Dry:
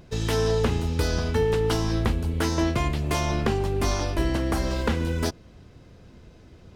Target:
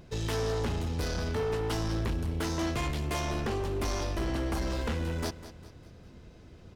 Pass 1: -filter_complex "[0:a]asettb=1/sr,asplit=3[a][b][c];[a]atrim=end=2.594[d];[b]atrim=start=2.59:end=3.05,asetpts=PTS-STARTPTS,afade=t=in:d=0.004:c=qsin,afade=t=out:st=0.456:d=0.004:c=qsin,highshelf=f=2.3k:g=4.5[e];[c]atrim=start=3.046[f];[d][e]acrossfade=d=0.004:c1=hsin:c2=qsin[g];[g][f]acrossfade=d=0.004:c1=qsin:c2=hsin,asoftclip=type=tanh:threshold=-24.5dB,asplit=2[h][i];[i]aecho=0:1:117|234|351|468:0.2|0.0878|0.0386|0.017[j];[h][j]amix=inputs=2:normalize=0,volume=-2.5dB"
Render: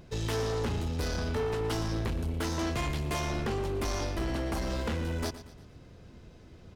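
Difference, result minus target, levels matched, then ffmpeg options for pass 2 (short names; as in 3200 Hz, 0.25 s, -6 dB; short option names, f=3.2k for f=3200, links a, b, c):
echo 84 ms early
-filter_complex "[0:a]asettb=1/sr,asplit=3[a][b][c];[a]atrim=end=2.594[d];[b]atrim=start=2.59:end=3.05,asetpts=PTS-STARTPTS,afade=t=in:d=0.004:c=qsin,afade=t=out:st=0.456:d=0.004:c=qsin,highshelf=f=2.3k:g=4.5[e];[c]atrim=start=3.046[f];[d][e]acrossfade=d=0.004:c1=hsin:c2=qsin[g];[g][f]acrossfade=d=0.004:c1=qsin:c2=hsin,asoftclip=type=tanh:threshold=-24.5dB,asplit=2[h][i];[i]aecho=0:1:201|402|603|804:0.2|0.0878|0.0386|0.017[j];[h][j]amix=inputs=2:normalize=0,volume=-2.5dB"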